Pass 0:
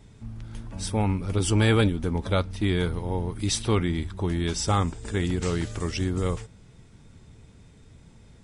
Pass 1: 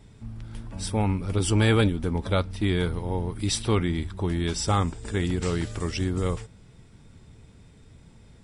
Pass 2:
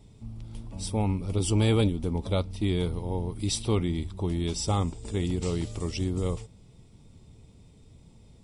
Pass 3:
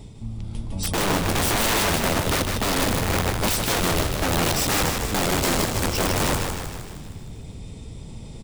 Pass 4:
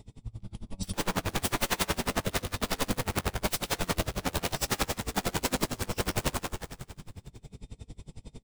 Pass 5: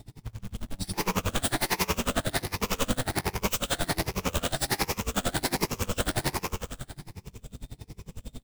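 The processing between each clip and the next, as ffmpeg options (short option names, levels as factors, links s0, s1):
-af "bandreject=f=6400:w=13"
-af "equalizer=f=1600:t=o:w=0.65:g=-14.5,volume=0.794"
-filter_complex "[0:a]areverse,acompressor=mode=upward:threshold=0.0141:ratio=2.5,areverse,aeval=exprs='(mod(18.8*val(0)+1,2)-1)/18.8':c=same,asplit=9[s0][s1][s2][s3][s4][s5][s6][s7][s8];[s1]adelay=155,afreqshift=-33,volume=0.562[s9];[s2]adelay=310,afreqshift=-66,volume=0.32[s10];[s3]adelay=465,afreqshift=-99,volume=0.182[s11];[s4]adelay=620,afreqshift=-132,volume=0.105[s12];[s5]adelay=775,afreqshift=-165,volume=0.0596[s13];[s6]adelay=930,afreqshift=-198,volume=0.0339[s14];[s7]adelay=1085,afreqshift=-231,volume=0.0193[s15];[s8]adelay=1240,afreqshift=-264,volume=0.011[s16];[s0][s9][s10][s11][s12][s13][s14][s15][s16]amix=inputs=9:normalize=0,volume=2.37"
-filter_complex "[0:a]flanger=delay=20:depth=2:speed=0.37,asplit=2[s0][s1];[s1]adelay=16,volume=0.251[s2];[s0][s2]amix=inputs=2:normalize=0,aeval=exprs='val(0)*pow(10,-29*(0.5-0.5*cos(2*PI*11*n/s))/20)':c=same"
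-filter_complex "[0:a]afftfilt=real='re*pow(10,9/40*sin(2*PI*(0.8*log(max(b,1)*sr/1024/100)/log(2)-(1.3)*(pts-256)/sr)))':imag='im*pow(10,9/40*sin(2*PI*(0.8*log(max(b,1)*sr/1024/100)/log(2)-(1.3)*(pts-256)/sr)))':win_size=1024:overlap=0.75,asplit=2[s0][s1];[s1]aeval=exprs='0.0447*(abs(mod(val(0)/0.0447+3,4)-2)-1)':c=same,volume=0.316[s2];[s0][s2]amix=inputs=2:normalize=0,acrusher=bits=3:mode=log:mix=0:aa=0.000001"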